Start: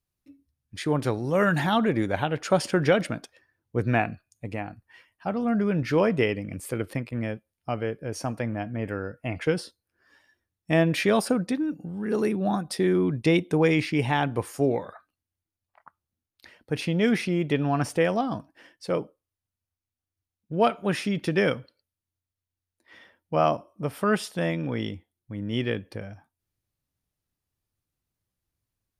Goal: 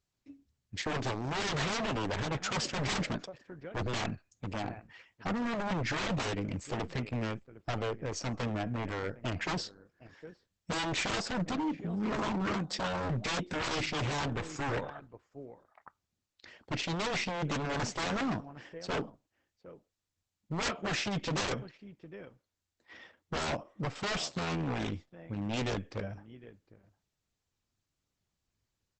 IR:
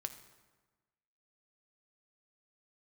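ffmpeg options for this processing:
-filter_complex "[0:a]asplit=2[s0][s1];[s1]adelay=758,volume=0.0708,highshelf=f=4000:g=-17.1[s2];[s0][s2]amix=inputs=2:normalize=0,aeval=exprs='0.0473*(abs(mod(val(0)/0.0473+3,4)-2)-1)':c=same" -ar 48000 -c:a libopus -b:a 10k

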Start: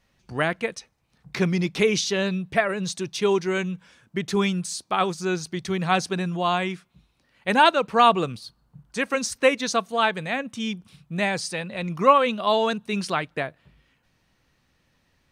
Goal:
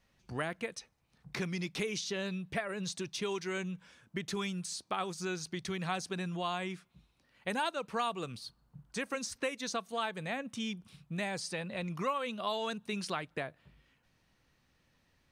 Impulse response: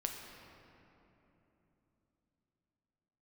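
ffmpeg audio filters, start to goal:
-filter_complex "[0:a]acrossover=split=1300|5900[s0][s1][s2];[s0]acompressor=threshold=0.0282:ratio=4[s3];[s1]acompressor=threshold=0.0178:ratio=4[s4];[s2]acompressor=threshold=0.01:ratio=4[s5];[s3][s4][s5]amix=inputs=3:normalize=0,volume=0.562"

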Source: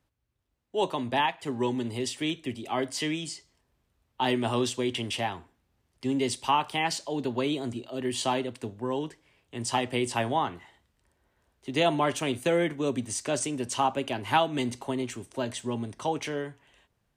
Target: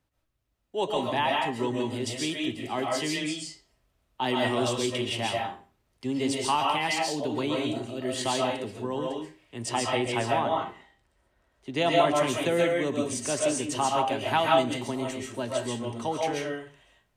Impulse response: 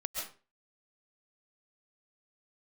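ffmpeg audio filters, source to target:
-filter_complex "[0:a]asettb=1/sr,asplit=3[s0][s1][s2];[s0]atrim=end=9.694[s3];[s1]atrim=start=9.69:end=11.8,asetpts=PTS-STARTPTS,afade=t=in:d=0.004:c=qsin,afade=t=out:st=2.106:d=0.004:c=qsin,highshelf=f=7700:g=-8[s4];[s2]atrim=start=11.796[s5];[s3][s4]acrossfade=d=0.004:c1=hsin:c2=qsin[s6];[s6][s5]acrossfade=d=0.004:c1=qsin:c2=hsin[s7];[1:a]atrim=start_sample=2205[s8];[s7][s8]afir=irnorm=-1:irlink=0"

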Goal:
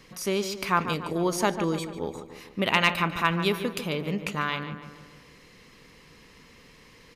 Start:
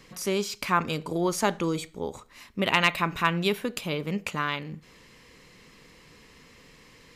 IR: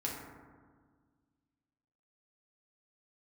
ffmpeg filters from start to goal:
-filter_complex "[0:a]bandreject=f=7500:w=10,asplit=2[s0][s1];[s1]adelay=146,lowpass=f=2600:p=1,volume=0.335,asplit=2[s2][s3];[s3]adelay=146,lowpass=f=2600:p=1,volume=0.55,asplit=2[s4][s5];[s5]adelay=146,lowpass=f=2600:p=1,volume=0.55,asplit=2[s6][s7];[s7]adelay=146,lowpass=f=2600:p=1,volume=0.55,asplit=2[s8][s9];[s9]adelay=146,lowpass=f=2600:p=1,volume=0.55,asplit=2[s10][s11];[s11]adelay=146,lowpass=f=2600:p=1,volume=0.55[s12];[s0][s2][s4][s6][s8][s10][s12]amix=inputs=7:normalize=0"

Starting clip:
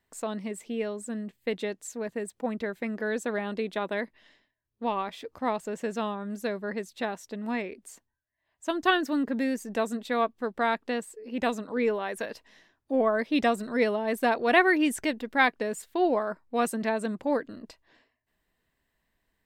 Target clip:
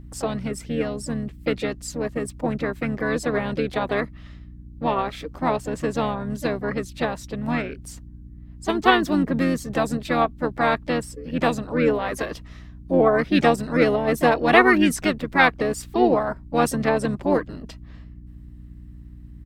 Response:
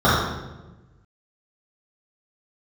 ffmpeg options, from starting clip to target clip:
-filter_complex "[0:a]aeval=exprs='val(0)+0.00501*(sin(2*PI*60*n/s)+sin(2*PI*2*60*n/s)/2+sin(2*PI*3*60*n/s)/3+sin(2*PI*4*60*n/s)/4+sin(2*PI*5*60*n/s)/5)':c=same,asplit=3[s0][s1][s2];[s1]asetrate=29433,aresample=44100,atempo=1.49831,volume=0.562[s3];[s2]asetrate=52444,aresample=44100,atempo=0.840896,volume=0.251[s4];[s0][s3][s4]amix=inputs=3:normalize=0,volume=1.78"

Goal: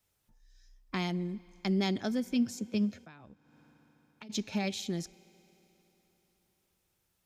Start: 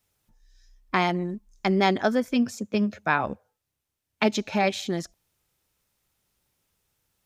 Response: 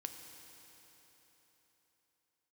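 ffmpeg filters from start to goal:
-filter_complex "[0:a]acrossover=split=320|3000[s0][s1][s2];[s1]acompressor=threshold=0.00126:ratio=1.5[s3];[s0][s3][s2]amix=inputs=3:normalize=0,asplit=2[s4][s5];[1:a]atrim=start_sample=2205[s6];[s5][s6]afir=irnorm=-1:irlink=0,volume=0.266[s7];[s4][s7]amix=inputs=2:normalize=0,asplit=3[s8][s9][s10];[s8]afade=t=out:st=3.04:d=0.02[s11];[s9]acompressor=threshold=0.00631:ratio=12,afade=t=in:st=3.04:d=0.02,afade=t=out:st=4.29:d=0.02[s12];[s10]afade=t=in:st=4.29:d=0.02[s13];[s11][s12][s13]amix=inputs=3:normalize=0,volume=0.562"

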